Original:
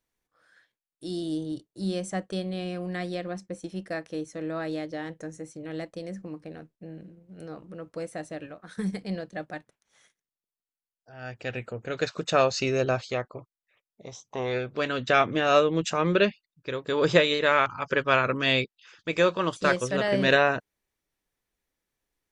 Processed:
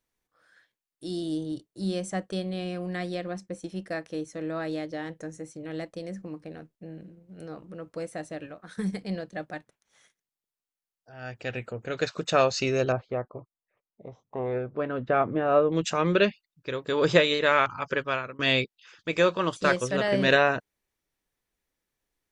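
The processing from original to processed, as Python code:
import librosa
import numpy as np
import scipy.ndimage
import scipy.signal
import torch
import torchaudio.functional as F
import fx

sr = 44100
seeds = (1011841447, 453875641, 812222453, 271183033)

y = fx.lowpass(x, sr, hz=1100.0, slope=12, at=(12.92, 15.72))
y = fx.edit(y, sr, fx.fade_out_to(start_s=17.79, length_s=0.6, floor_db=-23.5), tone=tone)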